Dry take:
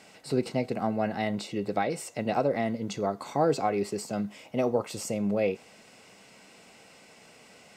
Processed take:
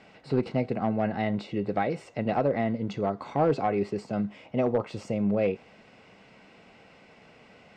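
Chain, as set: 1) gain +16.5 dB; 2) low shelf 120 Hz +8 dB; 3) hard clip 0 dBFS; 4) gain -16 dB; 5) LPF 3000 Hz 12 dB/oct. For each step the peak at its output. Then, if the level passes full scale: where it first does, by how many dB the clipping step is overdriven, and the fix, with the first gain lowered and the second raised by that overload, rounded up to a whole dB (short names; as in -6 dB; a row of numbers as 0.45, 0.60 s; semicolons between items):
+4.5, +5.0, 0.0, -16.0, -15.5 dBFS; step 1, 5.0 dB; step 1 +11.5 dB, step 4 -11 dB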